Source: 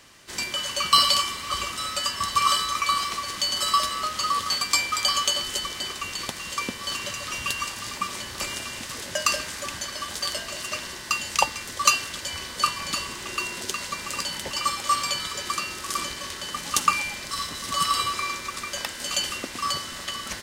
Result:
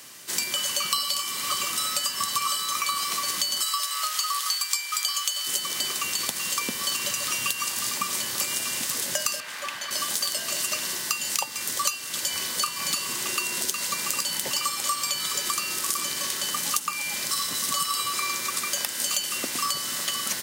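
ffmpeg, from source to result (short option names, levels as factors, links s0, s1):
-filter_complex "[0:a]asettb=1/sr,asplit=3[s0][s1][s2];[s0]atrim=end=3.614[s3];[s1]atrim=start=3.61:end=5.47,asetpts=PTS-STARTPTS,afade=t=in:d=0.004:c=qsin,afade=t=out:st=1.856:d=0.004:c=qsin,highpass=980[s4];[s2]atrim=start=5.466[s5];[s3][s4]acrossfade=d=0.004:c1=hsin:c2=qsin[s6];[s6][s5]acrossfade=d=0.004:c1=qsin:c2=hsin,asettb=1/sr,asplit=3[s7][s8][s9];[s7]atrim=end=9.404[s10];[s8]atrim=start=9.4:end=9.91,asetpts=PTS-STARTPTS,afade=t=in:d=0.004:c=qsin,afade=t=out:st=0.506:d=0.004:c=qsin,acrossover=split=590 3500:gain=0.251 1 0.158[s11][s12][s13];[s11][s12][s13]amix=inputs=3:normalize=0[s14];[s9]atrim=start=9.906[s15];[s10][s14]acrossfade=d=0.004:c1=hsin:c2=qsin[s16];[s16][s15]acrossfade=d=0.004:c1=qsin:c2=hsin,highpass=f=120:w=0.5412,highpass=f=120:w=1.3066,aemphasis=mode=production:type=50fm,acompressor=threshold=0.0562:ratio=10,volume=1.26"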